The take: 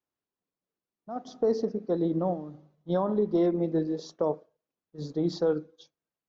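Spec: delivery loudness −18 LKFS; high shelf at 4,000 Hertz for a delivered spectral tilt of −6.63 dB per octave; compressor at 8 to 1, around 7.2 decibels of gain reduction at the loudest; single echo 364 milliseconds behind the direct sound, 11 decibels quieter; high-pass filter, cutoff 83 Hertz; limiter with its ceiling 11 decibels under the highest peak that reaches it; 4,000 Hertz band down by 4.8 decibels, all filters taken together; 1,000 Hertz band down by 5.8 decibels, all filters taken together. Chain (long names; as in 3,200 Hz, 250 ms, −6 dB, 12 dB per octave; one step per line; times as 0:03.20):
high-pass filter 83 Hz
parametric band 1,000 Hz −8.5 dB
high-shelf EQ 4,000 Hz +5 dB
parametric band 4,000 Hz −9 dB
downward compressor 8 to 1, threshold −29 dBFS
brickwall limiter −30.5 dBFS
single-tap delay 364 ms −11 dB
level +22 dB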